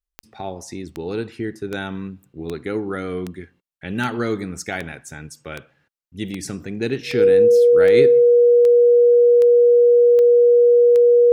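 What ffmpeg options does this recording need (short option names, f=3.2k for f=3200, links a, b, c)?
-af "adeclick=t=4,bandreject=f=480:w=30"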